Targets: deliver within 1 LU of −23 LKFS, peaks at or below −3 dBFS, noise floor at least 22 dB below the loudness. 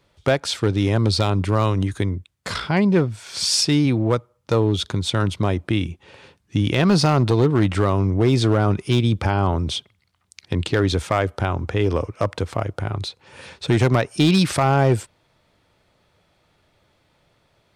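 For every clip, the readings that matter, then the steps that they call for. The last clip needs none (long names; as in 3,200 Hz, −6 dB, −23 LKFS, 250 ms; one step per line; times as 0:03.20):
share of clipped samples 1.3%; peaks flattened at −10.0 dBFS; integrated loudness −20.5 LKFS; sample peak −10.0 dBFS; target loudness −23.0 LKFS
→ clipped peaks rebuilt −10 dBFS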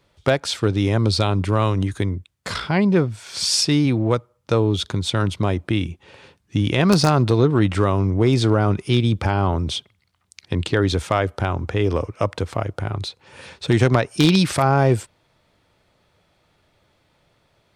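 share of clipped samples 0.0%; integrated loudness −20.0 LKFS; sample peak −1.0 dBFS; target loudness −23.0 LKFS
→ level −3 dB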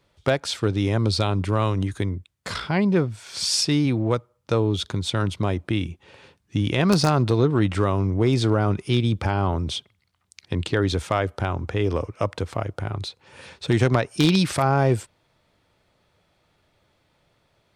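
integrated loudness −23.0 LKFS; sample peak −4.0 dBFS; background noise floor −68 dBFS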